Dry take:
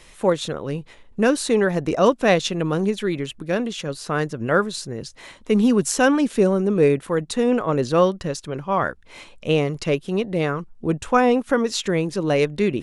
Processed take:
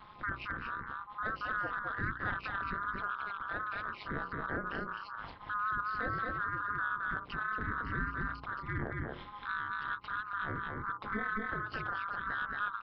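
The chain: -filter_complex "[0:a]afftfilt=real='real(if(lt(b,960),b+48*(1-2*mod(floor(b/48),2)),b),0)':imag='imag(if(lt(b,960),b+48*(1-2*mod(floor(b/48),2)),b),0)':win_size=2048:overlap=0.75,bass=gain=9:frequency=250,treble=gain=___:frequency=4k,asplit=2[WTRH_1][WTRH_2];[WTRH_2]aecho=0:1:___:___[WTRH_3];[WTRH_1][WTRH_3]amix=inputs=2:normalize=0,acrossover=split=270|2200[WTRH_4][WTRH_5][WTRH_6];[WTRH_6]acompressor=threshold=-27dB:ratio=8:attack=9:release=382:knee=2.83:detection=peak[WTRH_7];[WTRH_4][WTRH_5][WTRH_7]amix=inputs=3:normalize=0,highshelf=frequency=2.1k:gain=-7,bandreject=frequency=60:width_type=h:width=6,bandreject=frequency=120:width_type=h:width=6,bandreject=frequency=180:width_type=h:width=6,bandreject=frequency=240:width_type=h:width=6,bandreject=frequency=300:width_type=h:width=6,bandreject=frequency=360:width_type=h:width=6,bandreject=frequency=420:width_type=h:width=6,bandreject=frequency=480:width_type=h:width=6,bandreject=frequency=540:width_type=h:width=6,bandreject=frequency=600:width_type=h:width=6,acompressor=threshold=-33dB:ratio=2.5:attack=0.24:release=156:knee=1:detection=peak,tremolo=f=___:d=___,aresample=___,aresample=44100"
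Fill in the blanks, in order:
-11, 225, 0.562, 210, 0.947, 11025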